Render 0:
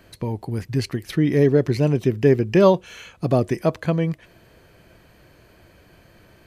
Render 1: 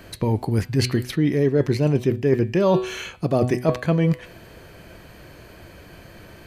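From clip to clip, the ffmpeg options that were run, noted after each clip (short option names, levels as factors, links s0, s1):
-af "bandreject=f=124.4:t=h:w=4,bandreject=f=248.8:t=h:w=4,bandreject=f=373.2:t=h:w=4,bandreject=f=497.6:t=h:w=4,bandreject=f=622:t=h:w=4,bandreject=f=746.4:t=h:w=4,bandreject=f=870.8:t=h:w=4,bandreject=f=995.2:t=h:w=4,bandreject=f=1119.6:t=h:w=4,bandreject=f=1244:t=h:w=4,bandreject=f=1368.4:t=h:w=4,bandreject=f=1492.8:t=h:w=4,bandreject=f=1617.2:t=h:w=4,bandreject=f=1741.6:t=h:w=4,bandreject=f=1866:t=h:w=4,bandreject=f=1990.4:t=h:w=4,bandreject=f=2114.8:t=h:w=4,bandreject=f=2239.2:t=h:w=4,bandreject=f=2363.6:t=h:w=4,bandreject=f=2488:t=h:w=4,bandreject=f=2612.4:t=h:w=4,bandreject=f=2736.8:t=h:w=4,bandreject=f=2861.2:t=h:w=4,bandreject=f=2985.6:t=h:w=4,bandreject=f=3110:t=h:w=4,bandreject=f=3234.4:t=h:w=4,bandreject=f=3358.8:t=h:w=4,bandreject=f=3483.2:t=h:w=4,bandreject=f=3607.6:t=h:w=4,bandreject=f=3732:t=h:w=4,bandreject=f=3856.4:t=h:w=4,bandreject=f=3980.8:t=h:w=4,bandreject=f=4105.2:t=h:w=4,bandreject=f=4229.6:t=h:w=4,bandreject=f=4354:t=h:w=4,bandreject=f=4478.4:t=h:w=4,bandreject=f=4602.8:t=h:w=4,bandreject=f=4727.2:t=h:w=4,areverse,acompressor=threshold=0.0631:ratio=6,areverse,volume=2.51"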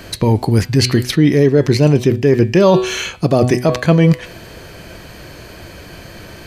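-af "equalizer=f=5400:w=0.89:g=5.5,alimiter=level_in=2.99:limit=0.891:release=50:level=0:latency=1,volume=0.891"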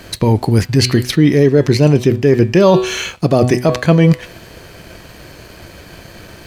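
-af "aeval=exprs='sgn(val(0))*max(abs(val(0))-0.00596,0)':c=same,volume=1.12"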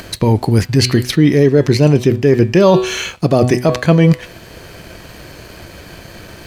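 -af "acompressor=mode=upward:threshold=0.0355:ratio=2.5"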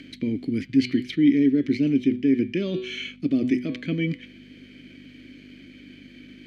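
-filter_complex "[0:a]aeval=exprs='val(0)+0.0355*(sin(2*PI*50*n/s)+sin(2*PI*2*50*n/s)/2+sin(2*PI*3*50*n/s)/3+sin(2*PI*4*50*n/s)/4+sin(2*PI*5*50*n/s)/5)':c=same,asplit=3[s0][s1][s2];[s0]bandpass=f=270:t=q:w=8,volume=1[s3];[s1]bandpass=f=2290:t=q:w=8,volume=0.501[s4];[s2]bandpass=f=3010:t=q:w=8,volume=0.355[s5];[s3][s4][s5]amix=inputs=3:normalize=0"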